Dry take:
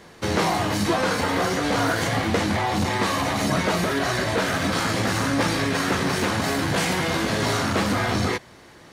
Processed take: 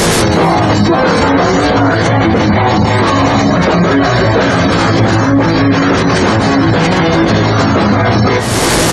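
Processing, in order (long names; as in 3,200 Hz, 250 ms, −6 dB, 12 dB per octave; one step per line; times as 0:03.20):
linear delta modulator 64 kbit/s, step −37 dBFS
double-tracking delay 18 ms −8 dB
downward compressor 6 to 1, threshold −35 dBFS, peak gain reduction 17 dB
hum removal 72.57 Hz, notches 28
gate on every frequency bin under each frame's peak −25 dB strong
parametric band 2,400 Hz −5 dB 2.1 octaves
repeating echo 317 ms, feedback 31%, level −15 dB
boost into a limiter +35.5 dB
level −1 dB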